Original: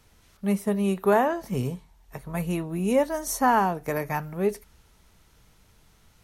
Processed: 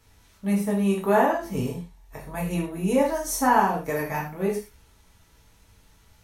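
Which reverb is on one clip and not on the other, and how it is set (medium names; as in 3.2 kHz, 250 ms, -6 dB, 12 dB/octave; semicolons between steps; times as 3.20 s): gated-style reverb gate 150 ms falling, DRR -3.5 dB; trim -3.5 dB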